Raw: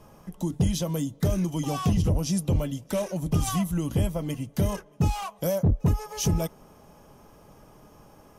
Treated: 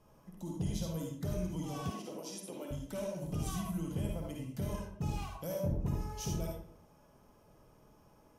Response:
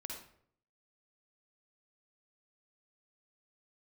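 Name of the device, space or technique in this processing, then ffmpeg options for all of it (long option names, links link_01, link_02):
bathroom: -filter_complex "[1:a]atrim=start_sample=2205[link_01];[0:a][link_01]afir=irnorm=-1:irlink=0,asettb=1/sr,asplit=3[link_02][link_03][link_04];[link_02]atrim=end=1.904[link_05];[link_03]atrim=start=1.9:end=2.71,asetpts=PTS-STARTPTS,afade=type=in:duration=0.004:curve=qsin,afade=type=out:start_time=0.806:duration=0.004:curve=qsin,highpass=frequency=270:width=0.5412,highpass=frequency=270:width=1.3066[link_06];[link_04]atrim=start=2.706[link_07];[link_05][link_06]acrossfade=duration=0.004:curve1=hsin:curve2=qsin[link_08];[link_08][link_07]acrossfade=duration=0.004:curve1=qsin:curve2=hsin,volume=-8.5dB"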